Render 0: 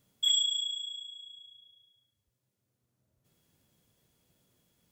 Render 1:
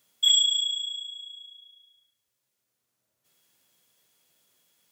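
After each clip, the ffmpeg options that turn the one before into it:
-af "highpass=f=1.3k:p=1,volume=7dB"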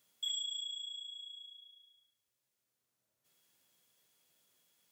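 -af "acompressor=threshold=-40dB:ratio=2,volume=-5.5dB"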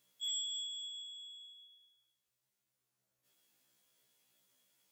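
-af "afftfilt=real='re*1.73*eq(mod(b,3),0)':imag='im*1.73*eq(mod(b,3),0)':win_size=2048:overlap=0.75,volume=1dB"

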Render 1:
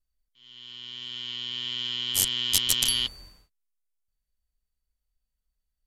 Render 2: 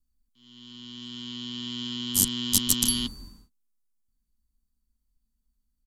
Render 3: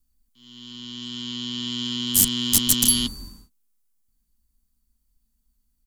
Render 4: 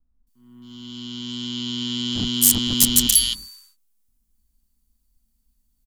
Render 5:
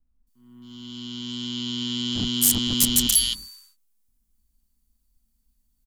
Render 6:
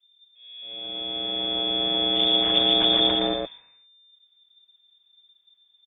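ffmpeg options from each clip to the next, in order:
-filter_complex "[0:a]firequalizer=gain_entry='entry(150,0);entry(230,11);entry(340,-4);entry(570,-20);entry(1000,-10);entry(2200,-16);entry(3900,-7);entry(7100,-3)':delay=0.05:min_phase=1,acrossover=split=380|1300[a][b][c];[b]acontrast=80[d];[a][d][c]amix=inputs=3:normalize=0,volume=5.5dB"
-af "asoftclip=type=tanh:threshold=-18.5dB,highshelf=f=6.8k:g=7,volume=5dB"
-filter_complex "[0:a]acrossover=split=1400[a][b];[b]adelay=270[c];[a][c]amix=inputs=2:normalize=0,volume=2.5dB"
-af "asoftclip=type=tanh:threshold=-7.5dB,volume=-1.5dB"
-af "lowpass=f=3.1k:t=q:w=0.5098,lowpass=f=3.1k:t=q:w=0.6013,lowpass=f=3.1k:t=q:w=0.9,lowpass=f=3.1k:t=q:w=2.563,afreqshift=-3600,aecho=1:1:117:0.631,volume=5.5dB"

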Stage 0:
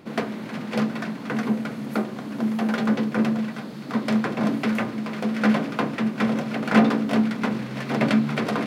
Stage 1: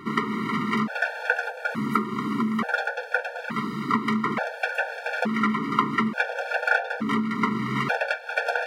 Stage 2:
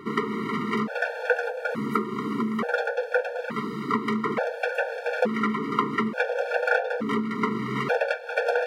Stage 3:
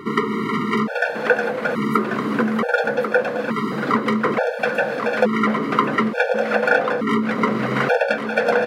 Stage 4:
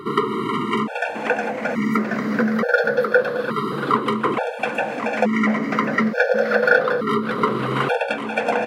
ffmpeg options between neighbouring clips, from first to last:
-af "acompressor=threshold=-27dB:ratio=10,equalizer=f=1.4k:t=o:w=1.7:g=12,afftfilt=real='re*gt(sin(2*PI*0.57*pts/sr)*(1-2*mod(floor(b*sr/1024/460),2)),0)':imag='im*gt(sin(2*PI*0.57*pts/sr)*(1-2*mod(floor(b*sr/1024/460),2)),0)':win_size=1024:overlap=0.75,volume=4.5dB"
-af "equalizer=f=480:w=2.5:g=12.5,volume=-3dB"
-af "areverse,acompressor=mode=upward:threshold=-26dB:ratio=2.5,areverse,aecho=1:1:1090:0.376,volume=6dB"
-af "afftfilt=real='re*pow(10,8/40*sin(2*PI*(0.63*log(max(b,1)*sr/1024/100)/log(2)-(-0.27)*(pts-256)/sr)))':imag='im*pow(10,8/40*sin(2*PI*(0.63*log(max(b,1)*sr/1024/100)/log(2)-(-0.27)*(pts-256)/sr)))':win_size=1024:overlap=0.75,volume=-1.5dB"

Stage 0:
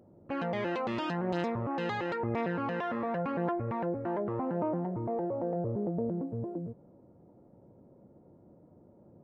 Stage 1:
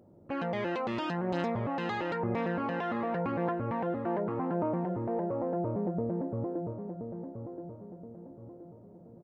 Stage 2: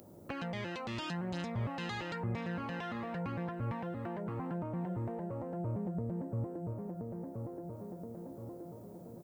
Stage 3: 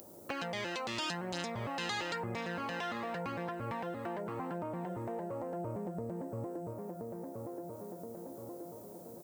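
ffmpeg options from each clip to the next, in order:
-filter_complex "[0:a]asplit=2[a][b];[b]adelay=1025,lowpass=f=1.7k:p=1,volume=-7.5dB,asplit=2[c][d];[d]adelay=1025,lowpass=f=1.7k:p=1,volume=0.43,asplit=2[e][f];[f]adelay=1025,lowpass=f=1.7k:p=1,volume=0.43,asplit=2[g][h];[h]adelay=1025,lowpass=f=1.7k:p=1,volume=0.43,asplit=2[i][j];[j]adelay=1025,lowpass=f=1.7k:p=1,volume=0.43[k];[a][c][e][g][i][k]amix=inputs=6:normalize=0"
-filter_complex "[0:a]acrossover=split=160[a][b];[b]acompressor=threshold=-46dB:ratio=5[c];[a][c]amix=inputs=2:normalize=0,crystalizer=i=7.5:c=0,volume=2.5dB"
-af "bass=f=250:g=-11,treble=f=4k:g=8,volume=3.5dB"

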